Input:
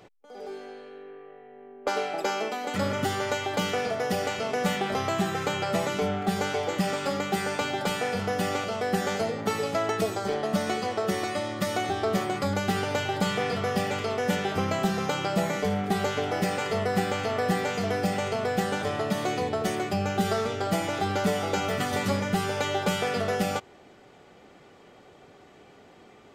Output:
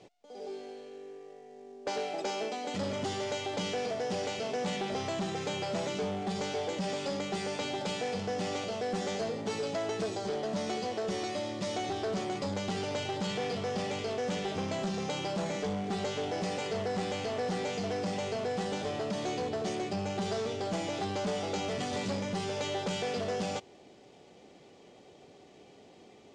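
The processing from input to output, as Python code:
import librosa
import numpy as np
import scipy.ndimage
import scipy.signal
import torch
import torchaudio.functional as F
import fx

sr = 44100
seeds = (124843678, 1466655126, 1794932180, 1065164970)

y = fx.cvsd(x, sr, bps=64000)
y = fx.peak_eq(y, sr, hz=1400.0, db=-12.5, octaves=1.1)
y = 10.0 ** (-27.0 / 20.0) * np.tanh(y / 10.0 ** (-27.0 / 20.0))
y = scipy.signal.sosfilt(scipy.signal.butter(4, 7100.0, 'lowpass', fs=sr, output='sos'), y)
y = fx.low_shelf(y, sr, hz=110.0, db=-9.5)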